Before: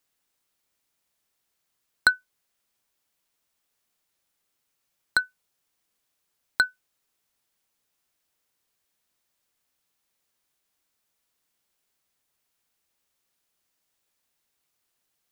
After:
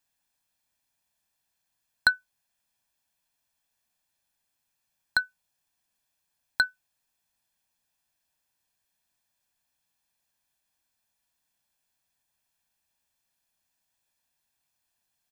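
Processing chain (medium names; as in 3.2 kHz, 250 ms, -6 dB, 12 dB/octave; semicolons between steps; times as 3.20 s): comb 1.2 ms, depth 54%; trim -3.5 dB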